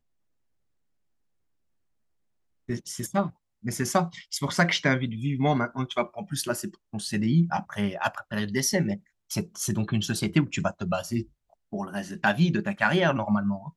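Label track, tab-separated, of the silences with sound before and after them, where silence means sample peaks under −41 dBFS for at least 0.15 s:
3.300000	3.640000	silence
6.740000	6.930000	silence
8.970000	9.300000	silence
11.230000	11.730000	silence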